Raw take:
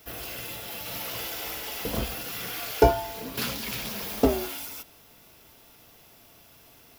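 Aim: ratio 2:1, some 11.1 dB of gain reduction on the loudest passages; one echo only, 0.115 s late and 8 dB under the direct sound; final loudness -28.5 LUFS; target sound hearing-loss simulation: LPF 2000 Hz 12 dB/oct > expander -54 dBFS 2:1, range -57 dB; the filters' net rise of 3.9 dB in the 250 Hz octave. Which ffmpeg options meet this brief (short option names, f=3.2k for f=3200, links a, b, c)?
-af "equalizer=f=250:t=o:g=4.5,acompressor=threshold=-33dB:ratio=2,lowpass=2k,aecho=1:1:115:0.398,agate=range=-57dB:threshold=-54dB:ratio=2,volume=8.5dB"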